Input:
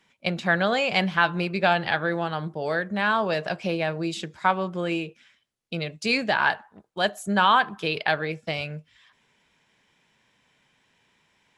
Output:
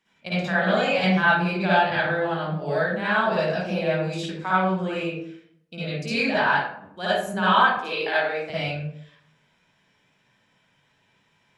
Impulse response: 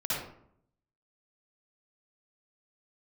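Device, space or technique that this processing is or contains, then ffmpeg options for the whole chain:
bathroom: -filter_complex "[1:a]atrim=start_sample=2205[a];[0:a][a]afir=irnorm=-1:irlink=0,asettb=1/sr,asplit=3[b][c][d];[b]atrim=end=7.784[e];[c]atrim=start=7.78:end=8.5,asetpts=PTS-STARTPTS,afade=t=in:d=0.004:c=qsin,afade=t=out:st=0.716:d=0.004:c=qsin,highpass=f=260:w=0.5412,highpass=f=260:w=1.3066[f];[d]atrim=start=8.496[g];[e][f]acrossfade=d=0.004:c1=hsin:c2=qsin[h];[h][g]acrossfade=d=0.004:c1=qsin:c2=hsin,volume=-6dB"

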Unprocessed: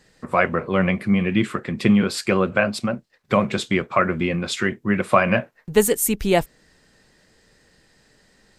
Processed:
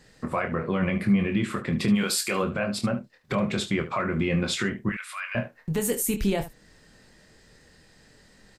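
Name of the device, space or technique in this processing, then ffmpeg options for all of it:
stacked limiters: -filter_complex "[0:a]asplit=3[a][b][c];[a]afade=t=out:st=1.94:d=0.02[d];[b]aemphasis=mode=production:type=riaa,afade=t=in:st=1.94:d=0.02,afade=t=out:st=2.42:d=0.02[e];[c]afade=t=in:st=2.42:d=0.02[f];[d][e][f]amix=inputs=3:normalize=0,alimiter=limit=-7.5dB:level=0:latency=1:release=368,alimiter=limit=-12.5dB:level=0:latency=1:release=26,alimiter=limit=-17dB:level=0:latency=1:release=140,asettb=1/sr,asplit=3[g][h][i];[g]atrim=end=4.894[j];[h]atrim=start=4.89:end=5.35,asetpts=PTS-STARTPTS,afade=t=in:d=0.004:c=qsin,afade=t=out:st=0.456:d=0.004:c=qsin,highpass=f=1.4k:w=0.5412,highpass=f=1.4k:w=1.3066[k];[i]atrim=start=5.346[l];[j][k]acrossfade=d=0.004:c1=hsin:c2=qsin[m];[m][l]acrossfade=d=0.004:c1=qsin:c2=hsin,bass=f=250:g=3,treble=f=4k:g=0,aecho=1:1:25|74:0.447|0.211"

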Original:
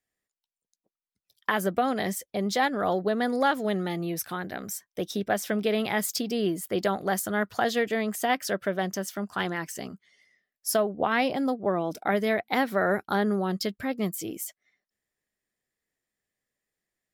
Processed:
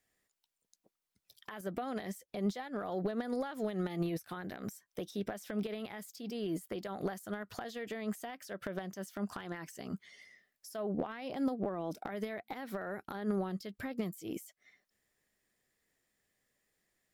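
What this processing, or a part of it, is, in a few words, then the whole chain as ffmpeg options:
de-esser from a sidechain: -filter_complex "[0:a]asplit=2[a][b];[b]highpass=f=4.1k:p=1,apad=whole_len=755710[c];[a][c]sidechaincompress=threshold=-53dB:ratio=12:attack=0.54:release=94,volume=6dB"

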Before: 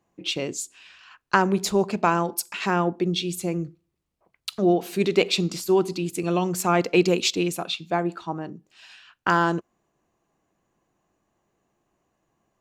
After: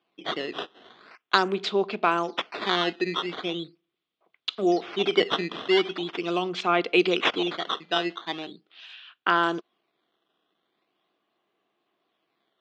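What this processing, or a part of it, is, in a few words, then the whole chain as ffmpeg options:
circuit-bent sampling toy: -af "acrusher=samples=11:mix=1:aa=0.000001:lfo=1:lforange=17.6:lforate=0.41,highpass=400,equalizer=f=550:t=q:w=4:g=-7,equalizer=f=900:t=q:w=4:g=-8,equalizer=f=1.7k:t=q:w=4:g=-4,equalizer=f=3.4k:t=q:w=4:g=8,lowpass=f=4k:w=0.5412,lowpass=f=4k:w=1.3066,volume=2.5dB"

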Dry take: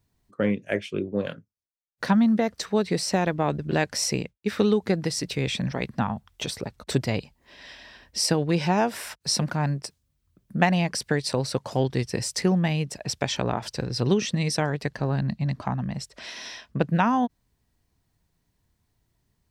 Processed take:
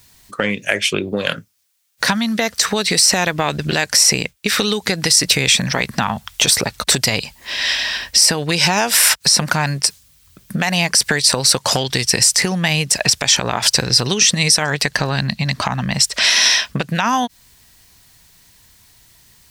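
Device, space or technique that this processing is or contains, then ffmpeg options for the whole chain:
mastering chain: -filter_complex "[0:a]equalizer=f=330:t=o:w=0.77:g=-2,acrossover=split=2200|5200[a][b][c];[a]acompressor=threshold=-28dB:ratio=4[d];[b]acompressor=threshold=-46dB:ratio=4[e];[c]acompressor=threshold=-33dB:ratio=4[f];[d][e][f]amix=inputs=3:normalize=0,acompressor=threshold=-33dB:ratio=3,tiltshelf=f=1.2k:g=-8.5,alimiter=level_in=23dB:limit=-1dB:release=50:level=0:latency=1,volume=-1dB"

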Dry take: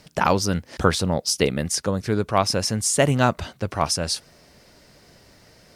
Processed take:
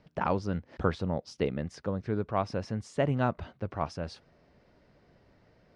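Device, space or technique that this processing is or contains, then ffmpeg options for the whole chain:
phone in a pocket: -af "lowpass=3.6k,highshelf=f=2k:g=-10,volume=-8dB"

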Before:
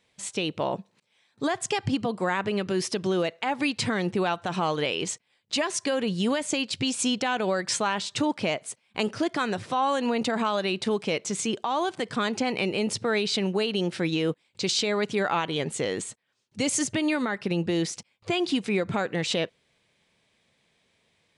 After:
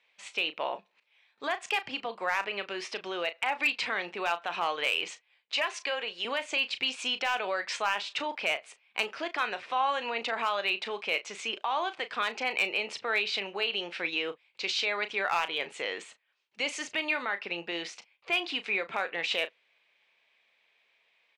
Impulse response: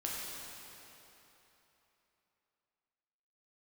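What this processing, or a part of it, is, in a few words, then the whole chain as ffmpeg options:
megaphone: -filter_complex "[0:a]asettb=1/sr,asplit=3[a][b][c];[a]atrim=end=5.554[d];[b]atrim=start=5.55:end=6.25,asetpts=PTS-STARTPTS,afade=t=in:d=0.004:c=qsin,afade=t=out:st=0.696:d=0.004:c=qsin,highpass=350[e];[c]atrim=start=6.246[f];[d][e]acrossfade=d=0.004:c1=hsin:c2=qsin[g];[g][f]acrossfade=d=0.004:c1=qsin:c2=hsin,highpass=690,lowpass=3.6k,equalizer=f=2.5k:t=o:w=0.55:g=7,asoftclip=type=hard:threshold=-17.5dB,asplit=2[h][i];[i]adelay=35,volume=-12dB[j];[h][j]amix=inputs=2:normalize=0,volume=-1.5dB"

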